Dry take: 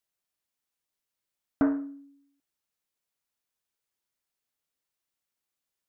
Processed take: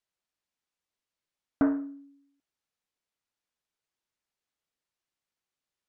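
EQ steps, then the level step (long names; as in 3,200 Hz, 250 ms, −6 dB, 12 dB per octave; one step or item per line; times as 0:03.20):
high-frequency loss of the air 55 metres
0.0 dB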